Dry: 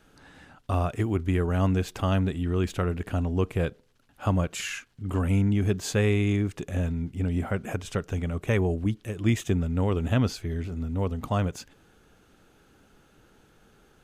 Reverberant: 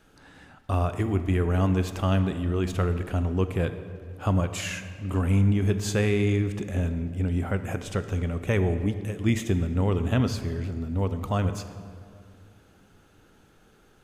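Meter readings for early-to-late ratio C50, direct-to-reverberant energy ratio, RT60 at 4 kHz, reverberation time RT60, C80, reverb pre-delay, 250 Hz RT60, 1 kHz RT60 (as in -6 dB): 10.5 dB, 9.5 dB, 1.4 s, 2.3 s, 11.5 dB, 20 ms, 2.8 s, 2.1 s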